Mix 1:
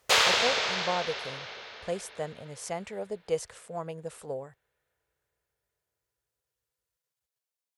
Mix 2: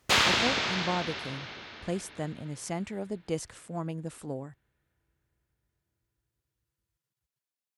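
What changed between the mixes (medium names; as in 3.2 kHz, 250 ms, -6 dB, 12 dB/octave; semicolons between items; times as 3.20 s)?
background: add tone controls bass +5 dB, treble -3 dB; master: add resonant low shelf 380 Hz +6 dB, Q 3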